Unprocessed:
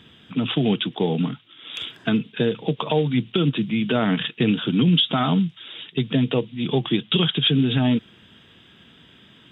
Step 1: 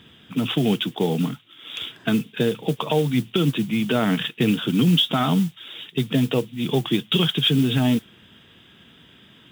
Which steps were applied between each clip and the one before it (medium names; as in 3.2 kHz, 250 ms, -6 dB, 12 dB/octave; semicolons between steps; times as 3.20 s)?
modulation noise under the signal 23 dB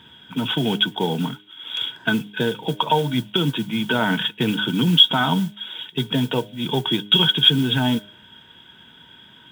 de-hum 102.5 Hz, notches 7; small resonant body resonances 930/1500/3300 Hz, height 16 dB, ringing for 45 ms; trim -1.5 dB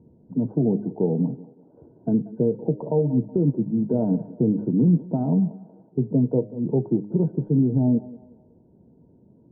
steep low-pass 610 Hz 36 dB/octave; thinning echo 186 ms, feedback 48%, high-pass 360 Hz, level -15 dB; trim +1.5 dB